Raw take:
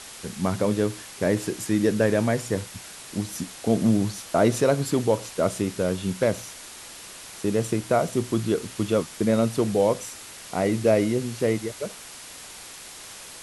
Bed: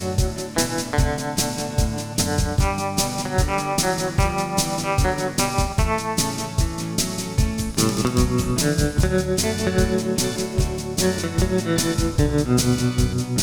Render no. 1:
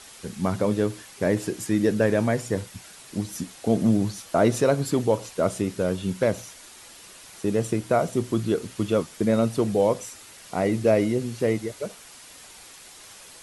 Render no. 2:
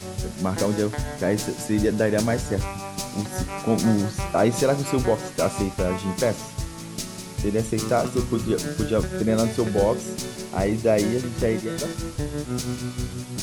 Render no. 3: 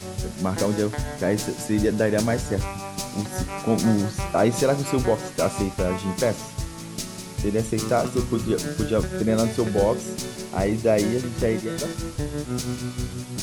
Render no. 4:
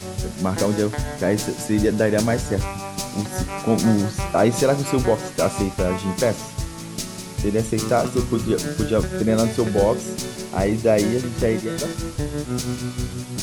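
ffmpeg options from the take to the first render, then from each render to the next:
-af "afftdn=nr=6:nf=-42"
-filter_complex "[1:a]volume=-9.5dB[a];[0:a][a]amix=inputs=2:normalize=0"
-af anull
-af "volume=2.5dB"

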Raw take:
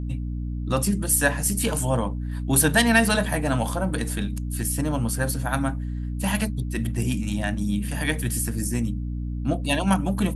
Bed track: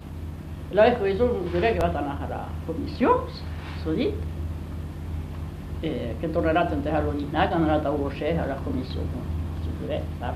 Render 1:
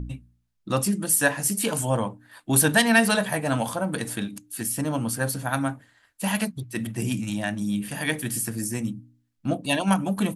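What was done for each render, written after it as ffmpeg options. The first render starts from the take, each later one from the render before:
-af "bandreject=f=60:t=h:w=4,bandreject=f=120:t=h:w=4,bandreject=f=180:t=h:w=4,bandreject=f=240:t=h:w=4,bandreject=f=300:t=h:w=4"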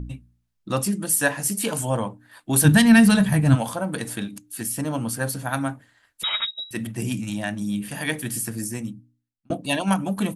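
-filter_complex "[0:a]asplit=3[a][b][c];[a]afade=t=out:st=2.64:d=0.02[d];[b]asubboost=boost=11.5:cutoff=180,afade=t=in:st=2.64:d=0.02,afade=t=out:st=3.54:d=0.02[e];[c]afade=t=in:st=3.54:d=0.02[f];[d][e][f]amix=inputs=3:normalize=0,asettb=1/sr,asplit=3[g][h][i];[g]atrim=end=6.234[j];[h]atrim=start=6.23:end=6.71,asetpts=PTS-STARTPTS,afade=t=in:d=0.004:c=qsin,afade=t=out:st=0.476:d=0.004:c=qsin,lowpass=f=3.4k:t=q:w=0.5098,lowpass=f=3.4k:t=q:w=0.6013,lowpass=f=3.4k:t=q:w=0.9,lowpass=f=3.4k:t=q:w=2.563,afreqshift=-4000[k];[i]atrim=start=6.706[l];[j][k]acrossfade=d=0.004:c1=hsin:c2=qsin[m];[m][l]acrossfade=d=0.004:c1=qsin:c2=hsin,asplit=2[n][o];[n]atrim=end=9.5,asetpts=PTS-STARTPTS,afade=t=out:st=8.61:d=0.89[p];[o]atrim=start=9.5,asetpts=PTS-STARTPTS,afade=t=in:d=0.004:c=hsin[q];[p][q]concat=n=2:v=0:a=1"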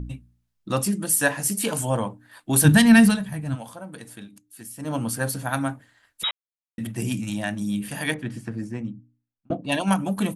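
-filter_complex "[0:a]asettb=1/sr,asplit=3[a][b][c];[a]atrim=end=8.144[d];[b]atrim=start=8.14:end=9.72,asetpts=PTS-STARTPTS,afade=t=in:d=0.004:c=qsin,afade=t=out:st=1.576:d=0.004:c=qsin,adynamicsmooth=sensitivity=0.5:basefreq=2.4k[e];[c]atrim=start=9.716[f];[d][e]acrossfade=d=0.004:c1=hsin:c2=qsin[g];[g][f]acrossfade=d=0.004:c1=qsin:c2=hsin,asplit=5[h][i][j][k][l];[h]atrim=end=3.19,asetpts=PTS-STARTPTS,afade=t=out:st=3.05:d=0.14:silence=0.266073[m];[i]atrim=start=3.19:end=4.79,asetpts=PTS-STARTPTS,volume=-11.5dB[n];[j]atrim=start=4.79:end=6.31,asetpts=PTS-STARTPTS,afade=t=in:d=0.14:silence=0.266073,afade=t=out:st=1.516:d=0.004:c=hsin[o];[k]atrim=start=6.31:end=6.78,asetpts=PTS-STARTPTS,volume=0[p];[l]atrim=start=6.78,asetpts=PTS-STARTPTS,afade=t=in:d=0.004:c=hsin[q];[m][n][o][p][q]concat=n=5:v=0:a=1"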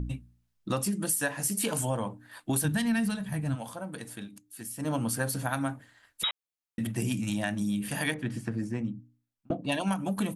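-af "acompressor=threshold=-26dB:ratio=6"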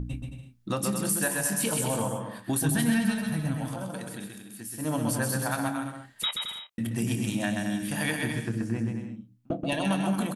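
-filter_complex "[0:a]asplit=2[a][b];[b]adelay=26,volume=-13dB[c];[a][c]amix=inputs=2:normalize=0,aecho=1:1:130|221|284.7|329.3|360.5:0.631|0.398|0.251|0.158|0.1"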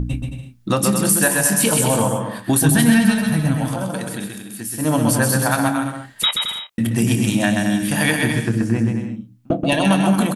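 -af "volume=11dB"

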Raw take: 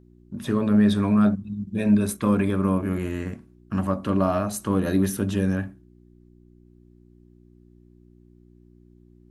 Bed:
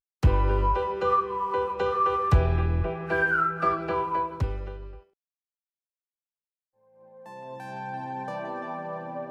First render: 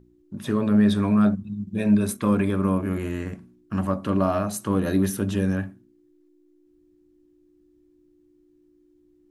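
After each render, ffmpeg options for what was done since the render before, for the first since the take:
-af "bandreject=f=60:t=h:w=4,bandreject=f=120:t=h:w=4,bandreject=f=180:t=h:w=4,bandreject=f=240:t=h:w=4"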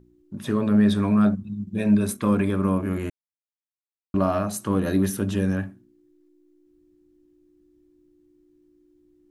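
-filter_complex "[0:a]asplit=3[a][b][c];[a]atrim=end=3.1,asetpts=PTS-STARTPTS,afade=t=out:st=3.096:d=0.004:c=hsin[d];[b]atrim=start=3.1:end=4.14,asetpts=PTS-STARTPTS,volume=0[e];[c]atrim=start=4.14,asetpts=PTS-STARTPTS,afade=t=in:d=0.004:c=hsin[f];[d][e][f]concat=n=3:v=0:a=1"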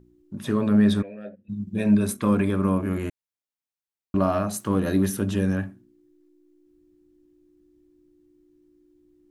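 -filter_complex "[0:a]asplit=3[a][b][c];[a]afade=t=out:st=1.01:d=0.02[d];[b]asplit=3[e][f][g];[e]bandpass=f=530:t=q:w=8,volume=0dB[h];[f]bandpass=f=1.84k:t=q:w=8,volume=-6dB[i];[g]bandpass=f=2.48k:t=q:w=8,volume=-9dB[j];[h][i][j]amix=inputs=3:normalize=0,afade=t=in:st=1.01:d=0.02,afade=t=out:st=1.48:d=0.02[k];[c]afade=t=in:st=1.48:d=0.02[l];[d][k][l]amix=inputs=3:normalize=0,asettb=1/sr,asplit=3[m][n][o];[m]atrim=end=4.564[p];[n]atrim=start=4.56:end=5.1,asetpts=PTS-STARTPTS,afade=t=in:d=0.004:c=qsin,afade=t=out:st=0.536:d=0.004:c=qsin,aeval=exprs='sgn(val(0))*max(abs(val(0))-0.00158,0)':c=same[q];[o]atrim=start=5.096[r];[p][q]acrossfade=d=0.004:c1=hsin:c2=qsin[s];[s][r]acrossfade=d=0.004:c1=qsin:c2=hsin"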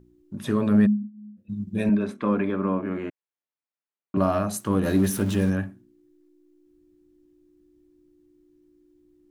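-filter_complex "[0:a]asplit=3[a][b][c];[a]afade=t=out:st=0.85:d=0.02[d];[b]asuperpass=centerf=230:order=12:qfactor=4.9,afade=t=in:st=0.85:d=0.02,afade=t=out:st=1.36:d=0.02[e];[c]afade=t=in:st=1.36:d=0.02[f];[d][e][f]amix=inputs=3:normalize=0,asettb=1/sr,asplit=3[g][h][i];[g]atrim=end=1.894[j];[h]atrim=start=1.89:end=4.17,asetpts=PTS-STARTPTS,afade=t=in:d=0.004:c=qsin,afade=t=out:st=2.276:d=0.004:c=qsin,highpass=210,lowpass=2.6k[k];[i]atrim=start=4.166[l];[j][k]acrossfade=d=0.004:c1=hsin:c2=qsin[m];[m][l]acrossfade=d=0.004:c1=qsin:c2=hsin,asettb=1/sr,asplit=3[n][o][p];[n]atrim=end=4.834[q];[o]atrim=start=4.83:end=5.5,asetpts=PTS-STARTPTS,afade=t=in:d=0.004:c=qsin,afade=t=out:st=0.666:d=0.004:c=qsin,aeval=exprs='val(0)+0.5*0.0211*sgn(val(0))':c=same[r];[p]atrim=start=5.496[s];[q][r]acrossfade=d=0.004:c1=hsin:c2=qsin[t];[t][s]acrossfade=d=0.004:c1=qsin:c2=hsin"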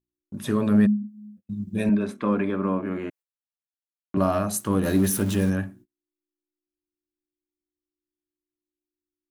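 -af "agate=range=-33dB:threshold=-48dB:ratio=16:detection=peak,highshelf=f=7.3k:g=7.5"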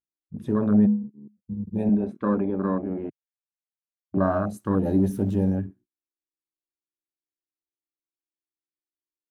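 -af "afwtdn=0.0447,highshelf=f=5.1k:g=-6"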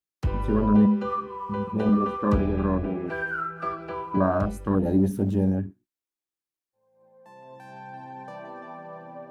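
-filter_complex "[1:a]volume=-6dB[a];[0:a][a]amix=inputs=2:normalize=0"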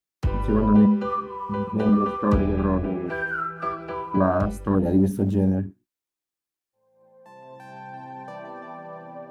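-af "volume=2dB"

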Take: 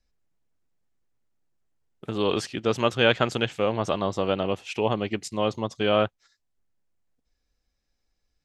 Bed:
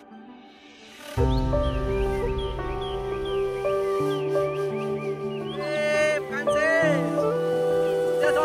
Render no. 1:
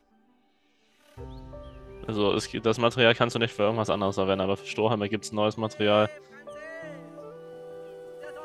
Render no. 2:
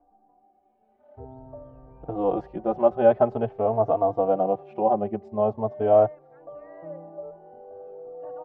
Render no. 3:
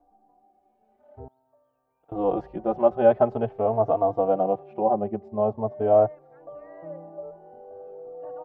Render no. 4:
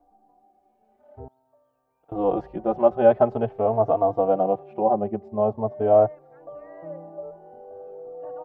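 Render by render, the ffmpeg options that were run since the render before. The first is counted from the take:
-filter_complex "[1:a]volume=-19.5dB[a];[0:a][a]amix=inputs=2:normalize=0"
-filter_complex "[0:a]lowpass=f=730:t=q:w=4.9,asplit=2[a][b];[b]adelay=3.8,afreqshift=0.47[c];[a][c]amix=inputs=2:normalize=1"
-filter_complex "[0:a]asettb=1/sr,asplit=3[a][b][c];[a]atrim=end=1.284[d];[b]atrim=start=1.28:end=2.12,asetpts=PTS-STARTPTS,afade=t=in:d=0.004:c=qsin,afade=t=out:st=0.836:d=0.004:c=qsin,aderivative[e];[c]atrim=start=2.116[f];[d][e]acrossfade=d=0.004:c1=hsin:c2=qsin[g];[g][f]acrossfade=d=0.004:c1=qsin:c2=hsin,asettb=1/sr,asplit=3[h][i][j];[h]atrim=end=4.594[k];[i]atrim=start=4.59:end=6.1,asetpts=PTS-STARTPTS,afade=t=in:d=0.004:c=qsin,afade=t=out:st=1.506:d=0.004:c=qsin,highshelf=f=2.2k:g=-8[l];[j]atrim=start=6.096[m];[k][l]acrossfade=d=0.004:c1=hsin:c2=qsin[n];[n][m]acrossfade=d=0.004:c1=qsin:c2=hsin"
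-af "volume=1.5dB"

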